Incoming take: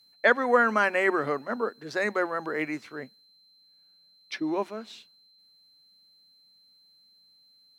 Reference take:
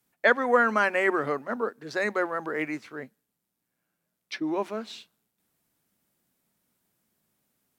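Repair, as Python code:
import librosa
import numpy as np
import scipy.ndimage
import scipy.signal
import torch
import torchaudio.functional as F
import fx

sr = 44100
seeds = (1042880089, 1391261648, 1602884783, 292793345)

y = fx.notch(x, sr, hz=4100.0, q=30.0)
y = fx.gain(y, sr, db=fx.steps((0.0, 0.0), (4.64, 4.0)))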